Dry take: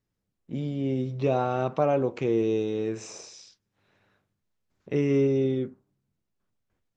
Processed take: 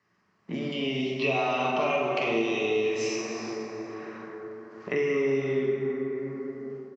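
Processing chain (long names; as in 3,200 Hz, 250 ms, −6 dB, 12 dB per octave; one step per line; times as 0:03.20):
0:00.72–0:03.16: high shelf with overshoot 2,100 Hz +11 dB, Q 3
dense smooth reverb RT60 3 s, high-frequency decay 0.35×, DRR −3 dB
automatic gain control gain up to 6.5 dB
loudspeaker in its box 240–5,300 Hz, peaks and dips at 290 Hz −7 dB, 500 Hz −10 dB, 1,100 Hz +9 dB, 1,900 Hz +7 dB, 3,600 Hz −10 dB
double-tracking delay 44 ms −6 dB
multiband upward and downward compressor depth 70%
level −8 dB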